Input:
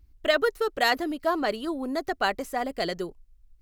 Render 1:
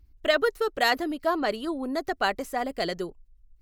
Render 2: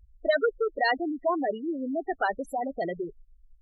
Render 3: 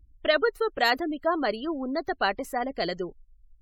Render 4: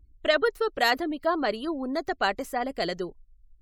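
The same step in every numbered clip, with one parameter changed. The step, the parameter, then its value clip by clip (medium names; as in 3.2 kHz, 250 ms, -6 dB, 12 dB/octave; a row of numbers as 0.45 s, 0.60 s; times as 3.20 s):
spectral gate, under each frame's peak: -55 dB, -10 dB, -30 dB, -40 dB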